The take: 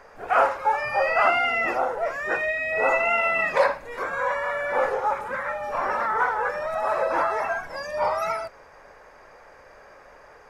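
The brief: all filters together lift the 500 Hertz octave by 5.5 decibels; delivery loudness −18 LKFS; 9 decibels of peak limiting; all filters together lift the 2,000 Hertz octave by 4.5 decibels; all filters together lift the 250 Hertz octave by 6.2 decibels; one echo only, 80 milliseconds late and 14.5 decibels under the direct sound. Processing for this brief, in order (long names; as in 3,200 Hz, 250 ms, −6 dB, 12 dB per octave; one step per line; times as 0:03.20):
parametric band 250 Hz +6 dB
parametric band 500 Hz +5.5 dB
parametric band 2,000 Hz +5 dB
brickwall limiter −12 dBFS
single-tap delay 80 ms −14.5 dB
level +3.5 dB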